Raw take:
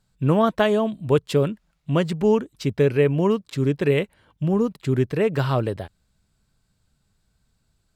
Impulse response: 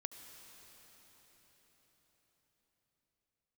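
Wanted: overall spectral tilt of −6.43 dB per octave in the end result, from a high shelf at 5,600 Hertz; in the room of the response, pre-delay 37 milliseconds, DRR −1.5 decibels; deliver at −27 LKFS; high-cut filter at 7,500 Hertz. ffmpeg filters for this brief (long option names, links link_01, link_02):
-filter_complex "[0:a]lowpass=7500,highshelf=frequency=5600:gain=-7.5,asplit=2[link_01][link_02];[1:a]atrim=start_sample=2205,adelay=37[link_03];[link_02][link_03]afir=irnorm=-1:irlink=0,volume=4.5dB[link_04];[link_01][link_04]amix=inputs=2:normalize=0,volume=-8.5dB"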